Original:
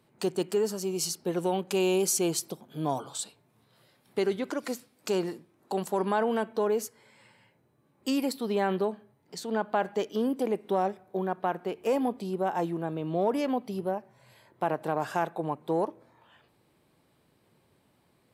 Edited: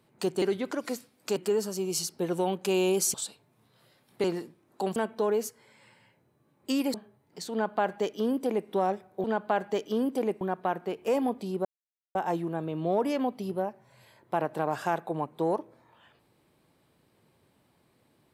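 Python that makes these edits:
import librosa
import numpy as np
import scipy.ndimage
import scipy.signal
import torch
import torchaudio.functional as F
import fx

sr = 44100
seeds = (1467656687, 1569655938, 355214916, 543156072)

y = fx.edit(x, sr, fx.cut(start_s=2.2, length_s=0.91),
    fx.move(start_s=4.21, length_s=0.94, to_s=0.42),
    fx.cut(start_s=5.87, length_s=0.47),
    fx.cut(start_s=8.32, length_s=0.58),
    fx.duplicate(start_s=9.48, length_s=1.17, to_s=11.2),
    fx.insert_silence(at_s=12.44, length_s=0.5), tone=tone)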